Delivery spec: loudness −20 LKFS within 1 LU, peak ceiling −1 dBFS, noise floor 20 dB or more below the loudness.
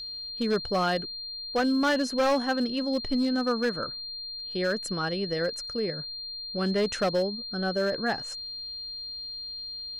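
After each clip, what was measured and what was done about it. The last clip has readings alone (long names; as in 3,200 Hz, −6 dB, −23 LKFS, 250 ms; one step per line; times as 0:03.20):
share of clipped samples 1.4%; peaks flattened at −20.0 dBFS; interfering tone 4,200 Hz; level of the tone −35 dBFS; integrated loudness −28.5 LKFS; sample peak −20.0 dBFS; target loudness −20.0 LKFS
→ clipped peaks rebuilt −20 dBFS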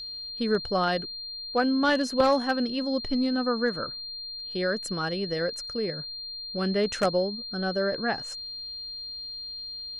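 share of clipped samples 0.0%; interfering tone 4,200 Hz; level of the tone −35 dBFS
→ notch filter 4,200 Hz, Q 30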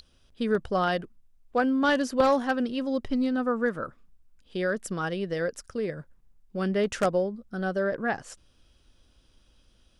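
interfering tone none found; integrated loudness −28.0 LKFS; sample peak −10.5 dBFS; target loudness −20.0 LKFS
→ level +8 dB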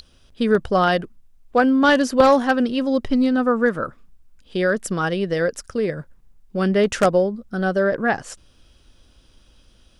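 integrated loudness −20.0 LKFS; sample peak −2.5 dBFS; background noise floor −55 dBFS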